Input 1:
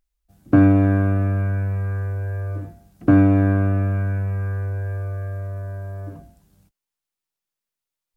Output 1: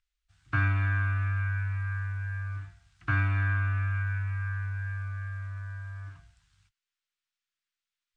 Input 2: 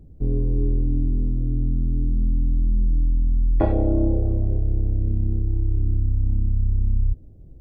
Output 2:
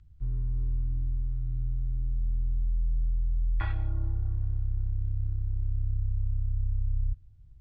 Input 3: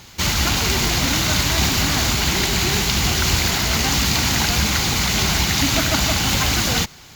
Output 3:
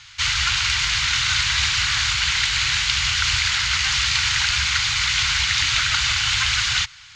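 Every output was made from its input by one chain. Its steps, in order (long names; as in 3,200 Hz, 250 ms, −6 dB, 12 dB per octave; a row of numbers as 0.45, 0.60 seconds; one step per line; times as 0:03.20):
drawn EQ curve 120 Hz 0 dB, 220 Hz −23 dB, 340 Hz −18 dB, 530 Hz −26 dB, 890 Hz −2 dB, 1,400 Hz +10 dB, 3,300 Hz +11 dB, 8,500 Hz +2 dB, 12,000 Hz −26 dB
level −8 dB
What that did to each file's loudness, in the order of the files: −10.5, −8.5, −0.5 LU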